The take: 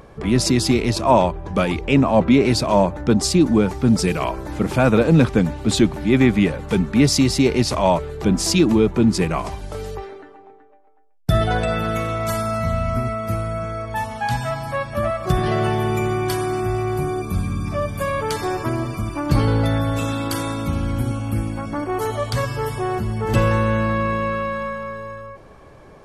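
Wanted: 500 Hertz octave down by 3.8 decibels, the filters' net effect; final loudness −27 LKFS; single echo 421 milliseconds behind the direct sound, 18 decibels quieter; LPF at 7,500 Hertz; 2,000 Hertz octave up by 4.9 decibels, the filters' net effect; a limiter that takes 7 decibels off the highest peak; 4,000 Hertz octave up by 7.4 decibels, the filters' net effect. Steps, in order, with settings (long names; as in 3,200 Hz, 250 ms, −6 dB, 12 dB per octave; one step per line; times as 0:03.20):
low-pass filter 7,500 Hz
parametric band 500 Hz −5.5 dB
parametric band 2,000 Hz +4 dB
parametric band 4,000 Hz +9 dB
brickwall limiter −9 dBFS
single-tap delay 421 ms −18 dB
level −5.5 dB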